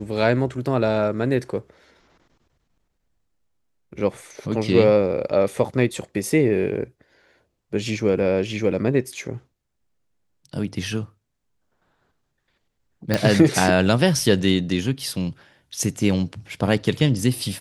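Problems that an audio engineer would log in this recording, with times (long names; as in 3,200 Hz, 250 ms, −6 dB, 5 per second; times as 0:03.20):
0:13.14: click −6 dBFS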